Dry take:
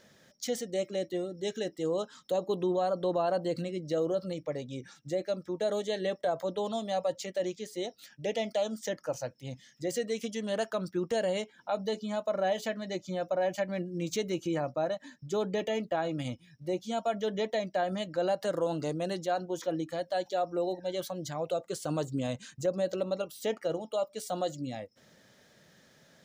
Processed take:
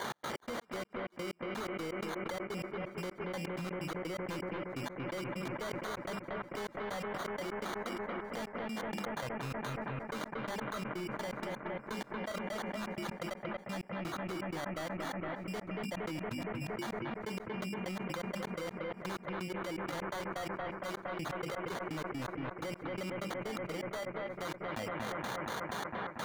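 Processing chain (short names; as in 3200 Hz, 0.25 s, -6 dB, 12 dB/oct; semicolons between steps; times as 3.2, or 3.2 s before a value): transient shaper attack +2 dB, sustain -6 dB; passive tone stack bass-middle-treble 6-0-2; notches 50/100/150/200/250/300/350 Hz; sample-and-hold 17×; overdrive pedal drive 26 dB, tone 5200 Hz, clips at -37 dBFS; step gate "x.x.x.x...x..x." 126 bpm -60 dB; on a send: analogue delay 0.232 s, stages 4096, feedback 59%, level -14 dB; on the sum: fast leveller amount 100%; gain +4.5 dB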